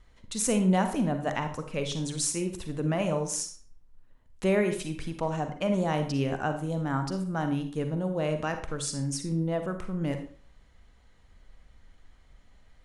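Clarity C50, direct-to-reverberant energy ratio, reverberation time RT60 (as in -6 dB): 8.5 dB, 6.5 dB, 0.50 s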